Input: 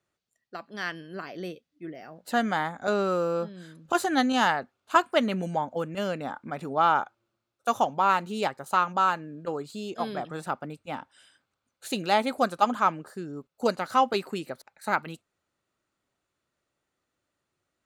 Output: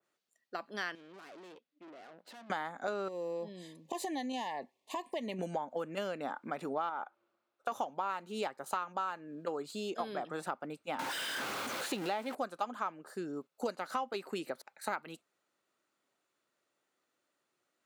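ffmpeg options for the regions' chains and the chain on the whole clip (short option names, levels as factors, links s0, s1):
-filter_complex "[0:a]asettb=1/sr,asplit=3[s0][s1][s2];[s0]atrim=end=0.954[s3];[s1]atrim=start=0.95:end=2.5,asetpts=PTS-STARTPTS,afade=t=in:d=0.004:c=qsin,afade=t=out:st=1.546:d=0.004:c=qsin,acompressor=threshold=0.0158:ratio=4:attack=3.2:release=140:knee=1:detection=peak,highpass=140,lowpass=4300,aeval=exprs='(tanh(282*val(0)+0.75)-tanh(0.75))/282':c=same[s4];[s2]atrim=start=2.496[s5];[s3][s4]acrossfade=d=0.004:c1=hsin:c2=qsin[s6];[s6][s5]acrossfade=d=0.004:c1=qsin:c2=hsin,asettb=1/sr,asplit=3[s7][s8][s9];[s7]atrim=end=3.084[s10];[s8]atrim=start=3.08:end=5.39,asetpts=PTS-STARTPTS,afade=t=in:d=0.004:c=qsin,afade=t=out:st=2.306:d=0.004:c=qsin,acompressor=threshold=0.0251:ratio=4:attack=3.2:release=140:knee=1:detection=peak,asuperstop=centerf=1400:order=12:qfactor=2.2[s11];[s9]atrim=start=5.386[s12];[s10][s11]acrossfade=d=0.004:c1=hsin:c2=qsin[s13];[s13][s12]acrossfade=d=0.004:c1=qsin:c2=hsin,asettb=1/sr,asplit=3[s14][s15][s16];[s14]atrim=end=6.894[s17];[s15]atrim=start=6.89:end=7.72,asetpts=PTS-STARTPTS,afade=t=in:d=0.004:c=qsin,afade=t=out:st=0.826:d=0.004:c=qsin,acompressor=threshold=0.0631:ratio=2.5:attack=3.2:release=140:knee=1:detection=peak,asplit=2[s18][s19];[s19]highpass=f=720:p=1,volume=3.98,asoftclip=type=tanh:threshold=0.237[s20];[s18][s20]amix=inputs=2:normalize=0,lowpass=f=1000:p=1,volume=0.501[s21];[s16]atrim=start=7.716[s22];[s17][s21]acrossfade=d=0.004:c1=hsin:c2=qsin[s23];[s23][s22]acrossfade=d=0.004:c1=qsin:c2=hsin,asettb=1/sr,asplit=3[s24][s25][s26];[s24]atrim=end=10.994[s27];[s25]atrim=start=10.99:end=12.35,asetpts=PTS-STARTPTS,afade=t=in:d=0.004:c=qsin,afade=t=out:st=1.356:d=0.004:c=qsin,aeval=exprs='val(0)+0.5*0.0376*sgn(val(0))':c=same,acrossover=split=4600[s28][s29];[s29]acompressor=threshold=0.01:ratio=4:attack=1:release=60[s30];[s28][s30]amix=inputs=2:normalize=0[s31];[s26]atrim=start=12.346[s32];[s27][s31]acrossfade=d=0.004:c1=hsin:c2=qsin[s33];[s33][s32]acrossfade=d=0.004:c1=qsin:c2=hsin,highpass=260,acompressor=threshold=0.0224:ratio=6,adynamicequalizer=threshold=0.00355:dfrequency=2500:dqfactor=0.7:tfrequency=2500:tqfactor=0.7:attack=5:release=100:ratio=0.375:range=1.5:mode=cutabove:tftype=highshelf"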